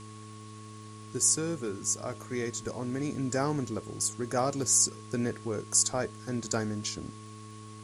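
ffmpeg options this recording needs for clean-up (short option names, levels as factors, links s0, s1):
-af "adeclick=t=4,bandreject=f=107.2:t=h:w=4,bandreject=f=214.4:t=h:w=4,bandreject=f=321.6:t=h:w=4,bandreject=f=428.8:t=h:w=4,bandreject=f=1100:w=30,afwtdn=0.0022"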